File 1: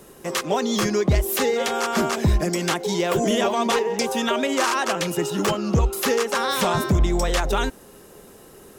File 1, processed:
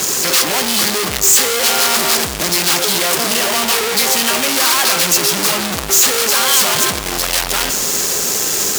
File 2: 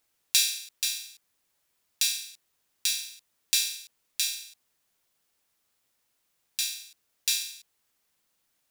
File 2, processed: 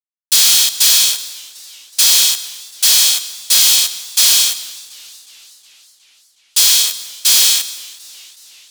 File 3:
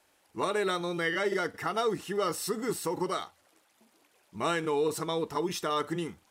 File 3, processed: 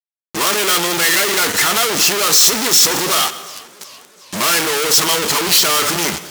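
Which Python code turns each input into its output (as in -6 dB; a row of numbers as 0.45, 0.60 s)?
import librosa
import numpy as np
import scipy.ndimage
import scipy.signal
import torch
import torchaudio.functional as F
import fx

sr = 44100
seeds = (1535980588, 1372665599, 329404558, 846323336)

y = fx.freq_compress(x, sr, knee_hz=2400.0, ratio=1.5)
y = fx.bass_treble(y, sr, bass_db=3, treble_db=4)
y = fx.leveller(y, sr, passes=3)
y = fx.fuzz(y, sr, gain_db=46.0, gate_db=-53.0)
y = fx.tilt_eq(y, sr, slope=3.0)
y = fx.rev_plate(y, sr, seeds[0], rt60_s=0.92, hf_ratio=0.75, predelay_ms=105, drr_db=15.0)
y = fx.echo_warbled(y, sr, ms=369, feedback_pct=59, rate_hz=2.8, cents=120, wet_db=-22.0)
y = y * librosa.db_to_amplitude(-3.5)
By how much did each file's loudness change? +9.5, +17.5, +18.5 LU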